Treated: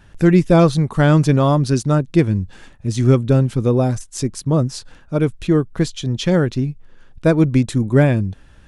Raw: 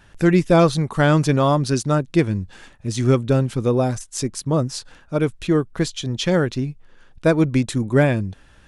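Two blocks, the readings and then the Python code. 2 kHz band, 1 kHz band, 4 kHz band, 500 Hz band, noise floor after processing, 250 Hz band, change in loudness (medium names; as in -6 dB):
-0.5 dB, 0.0 dB, -1.0 dB, +1.5 dB, -47 dBFS, +3.5 dB, +3.0 dB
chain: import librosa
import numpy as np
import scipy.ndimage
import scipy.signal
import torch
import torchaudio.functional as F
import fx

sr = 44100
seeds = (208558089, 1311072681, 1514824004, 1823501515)

y = fx.low_shelf(x, sr, hz=350.0, db=6.5)
y = y * 10.0 ** (-1.0 / 20.0)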